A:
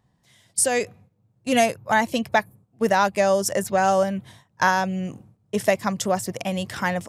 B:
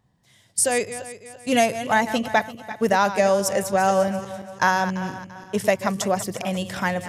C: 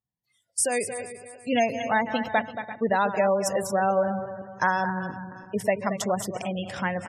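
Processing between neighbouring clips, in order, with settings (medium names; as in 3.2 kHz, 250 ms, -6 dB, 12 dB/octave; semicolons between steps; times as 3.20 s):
backward echo that repeats 170 ms, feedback 60%, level -12 dB
delay 227 ms -10.5 dB; spectral gate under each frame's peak -25 dB strong; spectral noise reduction 23 dB; trim -4 dB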